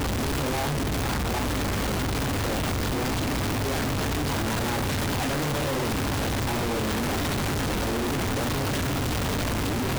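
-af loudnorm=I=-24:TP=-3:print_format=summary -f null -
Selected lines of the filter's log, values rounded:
Input Integrated:    -26.6 LUFS
Input True Peak:     -20.6 dBTP
Input LRA:             0.3 LU
Input Threshold:     -36.6 LUFS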